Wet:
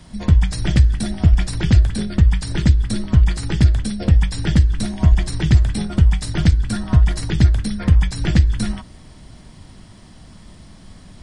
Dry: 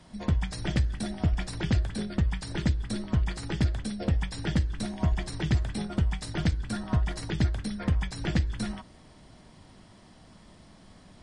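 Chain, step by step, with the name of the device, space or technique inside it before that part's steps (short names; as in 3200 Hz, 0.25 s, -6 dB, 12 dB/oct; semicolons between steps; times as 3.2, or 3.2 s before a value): smiley-face EQ (low shelf 120 Hz +8 dB; bell 640 Hz -3.5 dB 1.9 oct; high shelf 8100 Hz +5.5 dB); gain +8 dB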